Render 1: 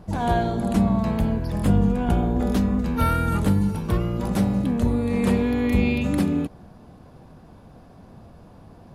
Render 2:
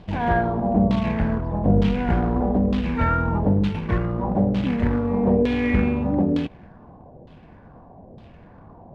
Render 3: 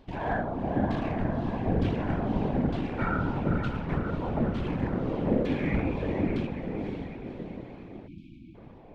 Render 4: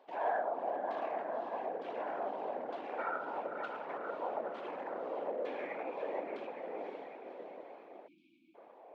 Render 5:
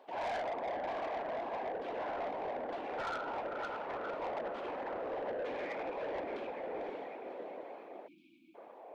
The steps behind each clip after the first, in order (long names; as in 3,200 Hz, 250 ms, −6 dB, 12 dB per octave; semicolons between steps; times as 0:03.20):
notch filter 1,300 Hz, Q 5.5; floating-point word with a short mantissa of 2 bits; auto-filter low-pass saw down 1.1 Hz 500–3,500 Hz
feedback delay with all-pass diffusion 542 ms, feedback 54%, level −5.5 dB; random phases in short frames; time-frequency box erased 0:08.08–0:08.55, 350–2,200 Hz; level −8.5 dB
high-shelf EQ 2,100 Hz −12 dB; brickwall limiter −23 dBFS, peak gain reduction 10 dB; four-pole ladder high-pass 470 Hz, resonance 30%; level +5.5 dB
soft clipping −38 dBFS, distortion −10 dB; level +4 dB